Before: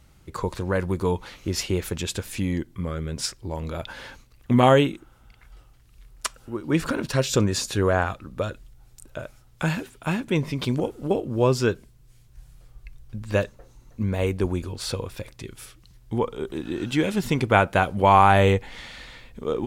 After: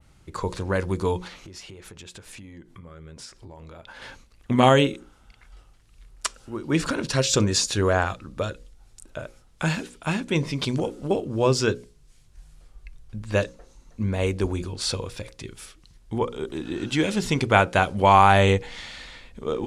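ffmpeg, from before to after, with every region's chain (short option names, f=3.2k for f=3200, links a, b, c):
-filter_complex "[0:a]asettb=1/sr,asplit=3[a][b][c];[a]atrim=end=1.274[d];[b]atrim=start=1.27:end=4.02,asetpts=PTS-STARTPTS,afade=t=in:d=0.004:c=qsin,afade=t=out:st=2.746:d=0.004:c=qsin,equalizer=f=970:t=o:w=2.6:g=4.5,acompressor=threshold=-39dB:ratio=12:attack=3.2:release=140:knee=1:detection=peak[e];[c]atrim=start=4.016[f];[d][e]acrossfade=d=0.004:c1=hsin:c2=qsin[g];[g][f]acrossfade=d=0.004:c1=qsin:c2=hsin,adynamicequalizer=threshold=0.00708:dfrequency=5600:dqfactor=0.71:tfrequency=5600:tqfactor=0.71:attack=5:release=100:ratio=0.375:range=3:mode=boostabove:tftype=bell,lowpass=f=11k:w=0.5412,lowpass=f=11k:w=1.3066,bandreject=f=60:t=h:w=6,bandreject=f=120:t=h:w=6,bandreject=f=180:t=h:w=6,bandreject=f=240:t=h:w=6,bandreject=f=300:t=h:w=6,bandreject=f=360:t=h:w=6,bandreject=f=420:t=h:w=6,bandreject=f=480:t=h:w=6,bandreject=f=540:t=h:w=6"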